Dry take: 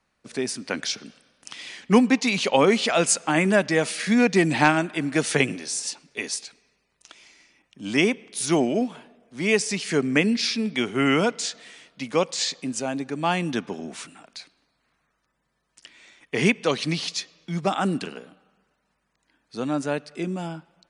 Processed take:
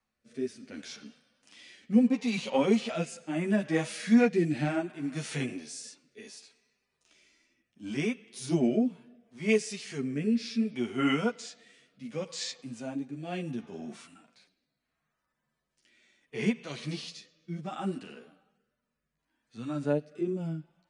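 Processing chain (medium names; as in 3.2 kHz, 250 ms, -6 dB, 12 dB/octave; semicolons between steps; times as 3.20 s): harmonic-percussive split percussive -17 dB; rotary cabinet horn 0.7 Hz; chorus voices 4, 1.3 Hz, delay 11 ms, depth 3 ms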